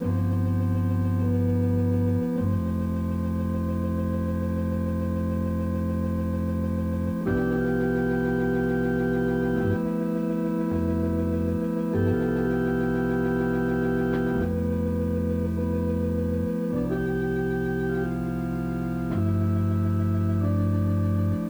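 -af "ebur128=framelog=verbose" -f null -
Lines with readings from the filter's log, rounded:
Integrated loudness:
  I:         -25.8 LUFS
  Threshold: -35.8 LUFS
Loudness range:
  LRA:         2.1 LU
  Threshold: -46.0 LUFS
  LRA low:   -27.2 LUFS
  LRA high:  -25.1 LUFS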